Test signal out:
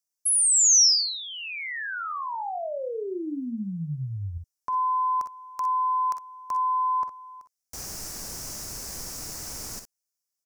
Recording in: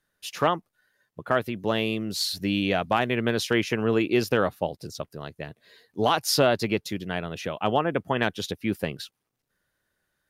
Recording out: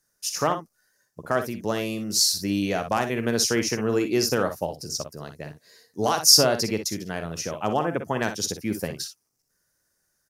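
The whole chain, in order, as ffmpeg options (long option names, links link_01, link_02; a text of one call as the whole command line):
ffmpeg -i in.wav -af "highshelf=frequency=4400:width_type=q:width=3:gain=8.5,aecho=1:1:47|60:0.237|0.316,volume=-1dB" out.wav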